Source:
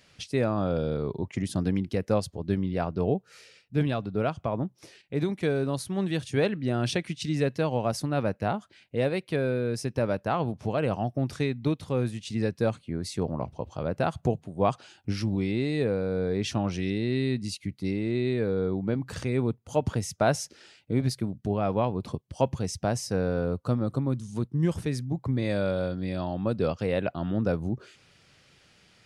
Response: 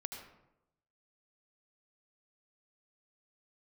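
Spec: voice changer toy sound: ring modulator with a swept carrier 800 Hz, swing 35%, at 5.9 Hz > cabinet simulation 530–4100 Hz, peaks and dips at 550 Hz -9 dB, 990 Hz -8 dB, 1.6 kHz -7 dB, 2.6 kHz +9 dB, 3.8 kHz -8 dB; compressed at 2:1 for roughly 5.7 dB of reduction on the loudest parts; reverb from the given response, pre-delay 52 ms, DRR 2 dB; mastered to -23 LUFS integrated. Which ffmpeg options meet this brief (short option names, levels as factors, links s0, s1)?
-filter_complex "[0:a]acompressor=threshold=0.0355:ratio=2,asplit=2[s0][s1];[1:a]atrim=start_sample=2205,adelay=52[s2];[s1][s2]afir=irnorm=-1:irlink=0,volume=0.944[s3];[s0][s3]amix=inputs=2:normalize=0,aeval=exprs='val(0)*sin(2*PI*800*n/s+800*0.35/5.9*sin(2*PI*5.9*n/s))':c=same,highpass=530,equalizer=f=550:t=q:w=4:g=-9,equalizer=f=990:t=q:w=4:g=-8,equalizer=f=1600:t=q:w=4:g=-7,equalizer=f=2600:t=q:w=4:g=9,equalizer=f=3800:t=q:w=4:g=-8,lowpass=f=4100:w=0.5412,lowpass=f=4100:w=1.3066,volume=5.62"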